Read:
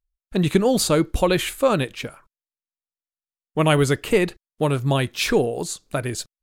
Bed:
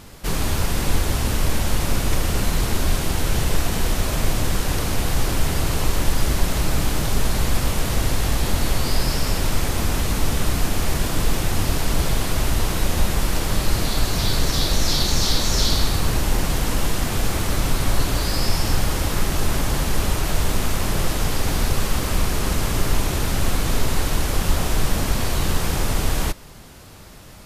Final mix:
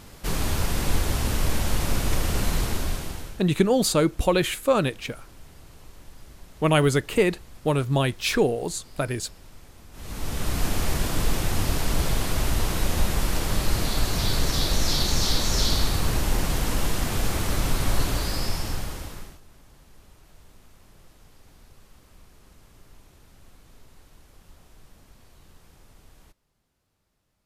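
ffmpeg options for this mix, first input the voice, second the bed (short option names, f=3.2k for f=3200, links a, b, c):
-filter_complex "[0:a]adelay=3050,volume=-2dB[a];[1:a]volume=20dB,afade=t=out:st=2.55:d=0.86:silence=0.0668344,afade=t=in:st=9.92:d=0.75:silence=0.0668344,afade=t=out:st=18.04:d=1.36:silence=0.0375837[b];[a][b]amix=inputs=2:normalize=0"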